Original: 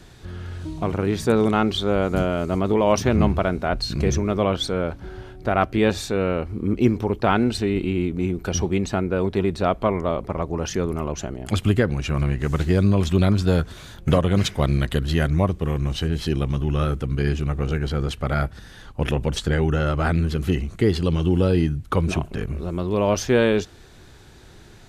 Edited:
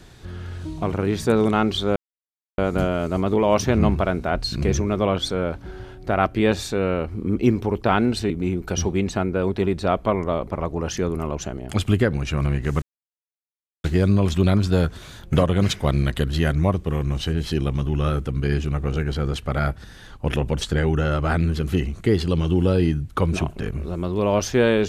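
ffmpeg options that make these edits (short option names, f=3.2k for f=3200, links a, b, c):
-filter_complex "[0:a]asplit=4[a][b][c][d];[a]atrim=end=1.96,asetpts=PTS-STARTPTS,afade=t=out:st=1.956:d=0.004:c=hsin,apad=pad_dur=0.62[e];[b]atrim=start=1.96:end=7.682,asetpts=PTS-STARTPTS,afade=t=in:d=0.004:c=hsin[f];[c]atrim=start=8.068:end=12.59,asetpts=PTS-STARTPTS,afade=t=out:st=4.518:d=0.004:c=hsin,apad=pad_dur=1.02[g];[d]atrim=start=12.59,asetpts=PTS-STARTPTS,afade=t=in:d=0.004:c=hsin[h];[e][f]concat=n=2:v=0:a=1[i];[g][h]concat=n=2:v=0:a=1[j];[i][j]acrossfade=d=0.004:c1=hsin:c2=hsin"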